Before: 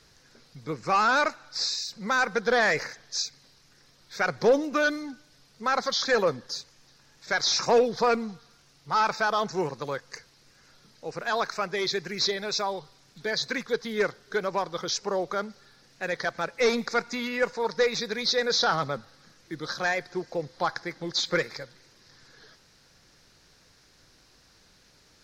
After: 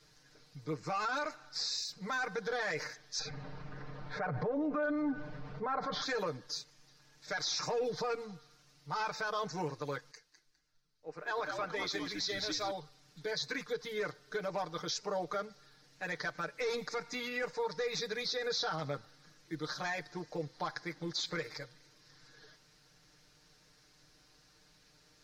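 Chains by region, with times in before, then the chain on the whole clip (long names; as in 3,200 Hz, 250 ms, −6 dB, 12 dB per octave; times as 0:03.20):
0:03.19–0:06.02: low-pass filter 1,200 Hz + parametric band 330 Hz −6.5 dB 0.29 octaves + envelope flattener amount 50%
0:10.11–0:12.71: parametric band 100 Hz −12.5 dB 1.1 octaves + echo with shifted repeats 204 ms, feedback 44%, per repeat −95 Hz, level −7 dB + multiband upward and downward expander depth 70%
whole clip: comb filter 6.6 ms, depth 95%; brickwall limiter −18.5 dBFS; level −8.5 dB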